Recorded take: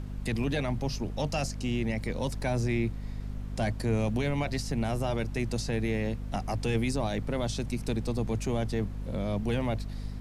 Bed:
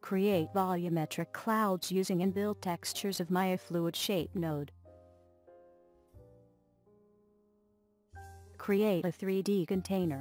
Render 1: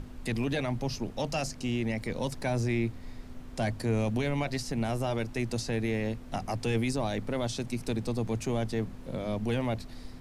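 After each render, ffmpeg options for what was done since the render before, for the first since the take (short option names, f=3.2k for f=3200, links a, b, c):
-af "bandreject=f=50:t=h:w=6,bandreject=f=100:t=h:w=6,bandreject=f=150:t=h:w=6,bandreject=f=200:t=h:w=6"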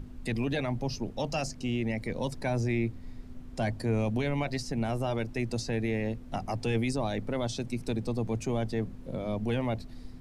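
-af "afftdn=nr=7:nf=-45"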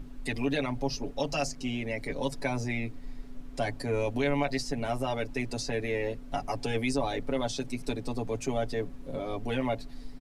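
-af "equalizer=f=120:w=1.1:g=-9.5,aecho=1:1:7.1:0.86"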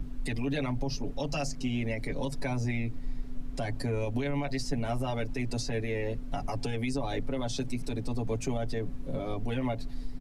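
-filter_complex "[0:a]acrossover=split=220|820[a][b][c];[a]acontrast=85[d];[d][b][c]amix=inputs=3:normalize=0,alimiter=limit=-22.5dB:level=0:latency=1:release=95"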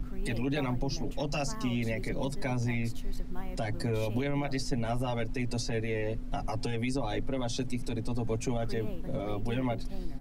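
-filter_complex "[1:a]volume=-13.5dB[a];[0:a][a]amix=inputs=2:normalize=0"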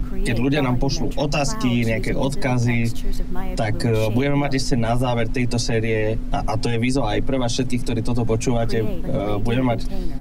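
-af "volume=11.5dB"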